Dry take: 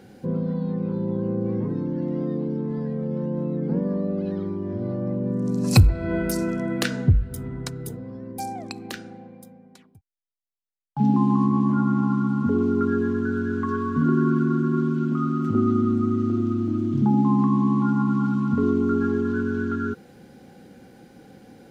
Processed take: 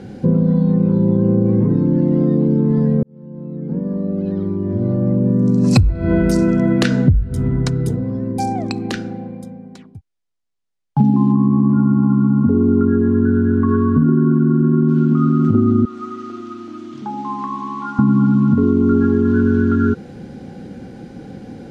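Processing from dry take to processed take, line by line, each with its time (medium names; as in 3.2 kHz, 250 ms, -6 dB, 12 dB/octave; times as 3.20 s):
3.03–6.17 s: fade in linear
11.32–14.89 s: tape spacing loss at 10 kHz 30 dB
15.85–17.99 s: Bessel high-pass 1.2 kHz
whole clip: low-pass 7.6 kHz 12 dB/octave; bass shelf 390 Hz +9.5 dB; compression, threshold -18 dBFS; trim +7.5 dB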